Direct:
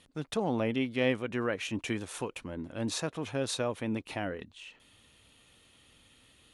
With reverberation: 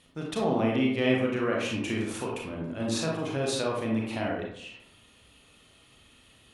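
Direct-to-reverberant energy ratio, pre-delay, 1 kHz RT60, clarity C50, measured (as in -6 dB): -2.5 dB, 30 ms, 0.70 s, 2.0 dB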